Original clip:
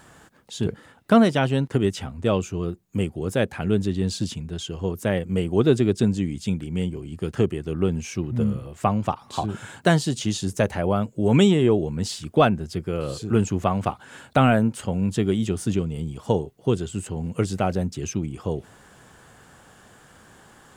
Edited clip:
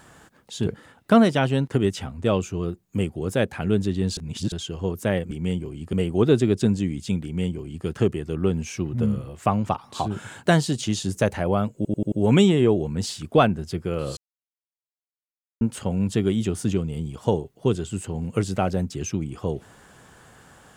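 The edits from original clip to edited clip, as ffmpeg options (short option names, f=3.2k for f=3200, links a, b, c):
-filter_complex "[0:a]asplit=11[a][b][c][d][e][f][g][h][i][j][k];[a]atrim=end=4.172[l];[b]atrim=start=4.168:end=4.522,asetpts=PTS-STARTPTS,areverse[m];[c]atrim=start=4.518:end=5.312[n];[d]atrim=start=6.618:end=7.242[o];[e]atrim=start=5.308:end=11.232[p];[f]atrim=start=11.138:end=11.232[q];[g]atrim=start=11.138:end=11.232[r];[h]atrim=start=11.138:end=11.232[s];[i]atrim=start=11.138:end=13.19,asetpts=PTS-STARTPTS,afade=t=out:st=2.048:d=0.004:c=hsin[t];[j]atrim=start=13.19:end=14.63,asetpts=PTS-STARTPTS,volume=0[u];[k]atrim=start=14.63,asetpts=PTS-STARTPTS,afade=t=in:d=0.004:c=hsin[v];[l][m]acrossfade=d=0.004:c1=hsin:c2=hsin[w];[w][n]acrossfade=d=0.004:c1=hsin:c2=hsin[x];[x][o]acrossfade=d=0.004:c1=hsin:c2=hsin[y];[y][p]acrossfade=d=0.004:c1=hsin:c2=hsin[z];[z][q]acrossfade=d=0.004:c1=hsin:c2=hsin[aa];[aa][r]acrossfade=d=0.004:c1=hsin:c2=hsin[ab];[ab][s]acrossfade=d=0.004:c1=hsin:c2=hsin[ac];[t][u][v]concat=n=3:v=0:a=1[ad];[ac][ad]acrossfade=d=0.004:c1=hsin:c2=hsin"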